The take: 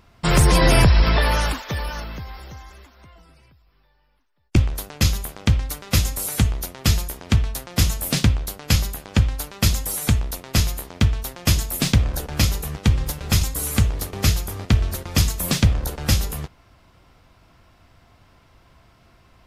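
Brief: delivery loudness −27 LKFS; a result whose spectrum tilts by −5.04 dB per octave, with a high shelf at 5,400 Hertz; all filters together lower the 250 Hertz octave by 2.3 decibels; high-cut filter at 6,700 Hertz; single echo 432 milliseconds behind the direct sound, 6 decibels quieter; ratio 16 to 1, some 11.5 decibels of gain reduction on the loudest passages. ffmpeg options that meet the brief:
ffmpeg -i in.wav -af "lowpass=6700,equalizer=frequency=250:width_type=o:gain=-3.5,highshelf=frequency=5400:gain=-7.5,acompressor=threshold=-22dB:ratio=16,aecho=1:1:432:0.501,volume=2.5dB" out.wav

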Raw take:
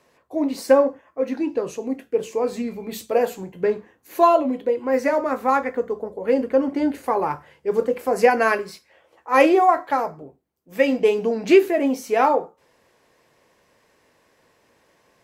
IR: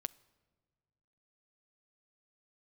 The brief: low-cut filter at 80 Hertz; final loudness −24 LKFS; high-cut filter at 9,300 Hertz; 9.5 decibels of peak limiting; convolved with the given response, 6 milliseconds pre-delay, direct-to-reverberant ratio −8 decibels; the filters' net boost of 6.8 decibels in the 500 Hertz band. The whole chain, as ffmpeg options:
-filter_complex "[0:a]highpass=80,lowpass=9300,equalizer=frequency=500:width_type=o:gain=8,alimiter=limit=-6dB:level=0:latency=1,asplit=2[link_01][link_02];[1:a]atrim=start_sample=2205,adelay=6[link_03];[link_02][link_03]afir=irnorm=-1:irlink=0,volume=10dB[link_04];[link_01][link_04]amix=inputs=2:normalize=0,volume=-14.5dB"

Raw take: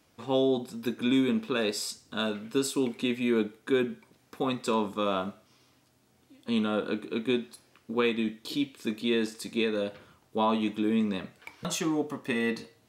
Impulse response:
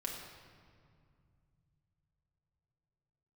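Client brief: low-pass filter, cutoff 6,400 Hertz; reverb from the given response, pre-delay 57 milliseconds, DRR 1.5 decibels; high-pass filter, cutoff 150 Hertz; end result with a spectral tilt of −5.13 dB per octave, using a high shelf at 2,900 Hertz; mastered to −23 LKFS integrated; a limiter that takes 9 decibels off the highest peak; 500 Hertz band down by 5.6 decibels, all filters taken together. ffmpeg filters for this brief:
-filter_complex "[0:a]highpass=150,lowpass=6400,equalizer=frequency=500:width_type=o:gain=-7,highshelf=frequency=2900:gain=-6,alimiter=level_in=2.5dB:limit=-24dB:level=0:latency=1,volume=-2.5dB,asplit=2[link_01][link_02];[1:a]atrim=start_sample=2205,adelay=57[link_03];[link_02][link_03]afir=irnorm=-1:irlink=0,volume=-2dB[link_04];[link_01][link_04]amix=inputs=2:normalize=0,volume=12dB"

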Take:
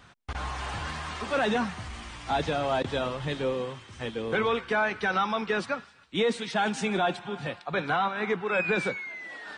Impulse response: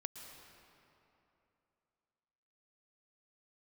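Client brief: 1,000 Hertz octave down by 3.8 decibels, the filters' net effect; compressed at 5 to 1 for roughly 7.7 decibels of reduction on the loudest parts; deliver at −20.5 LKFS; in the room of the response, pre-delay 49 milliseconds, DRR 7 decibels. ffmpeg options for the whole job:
-filter_complex "[0:a]equalizer=frequency=1000:width_type=o:gain=-5.5,acompressor=threshold=-32dB:ratio=5,asplit=2[link_01][link_02];[1:a]atrim=start_sample=2205,adelay=49[link_03];[link_02][link_03]afir=irnorm=-1:irlink=0,volume=-4.5dB[link_04];[link_01][link_04]amix=inputs=2:normalize=0,volume=15dB"

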